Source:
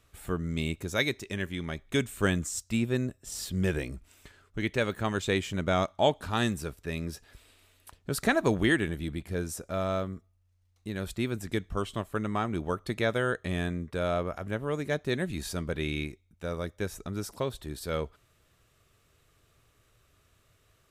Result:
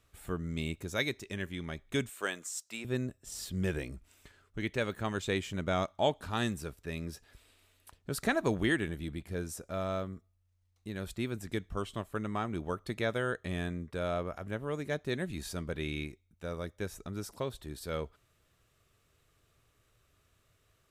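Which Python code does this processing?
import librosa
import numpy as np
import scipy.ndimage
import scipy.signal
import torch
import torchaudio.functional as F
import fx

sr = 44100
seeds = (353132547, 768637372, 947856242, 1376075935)

y = fx.highpass(x, sr, hz=520.0, slope=12, at=(2.09, 2.85))
y = F.gain(torch.from_numpy(y), -4.5).numpy()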